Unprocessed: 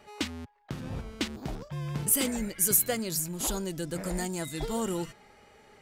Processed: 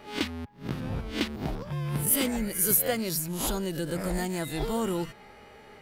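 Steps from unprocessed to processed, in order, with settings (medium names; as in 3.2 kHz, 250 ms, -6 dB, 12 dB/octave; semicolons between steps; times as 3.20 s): reverse spectral sustain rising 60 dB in 0.30 s; peaking EQ 7.2 kHz -8.5 dB 0.86 oct; in parallel at -1.5 dB: compression, threshold -38 dBFS, peak gain reduction 17.5 dB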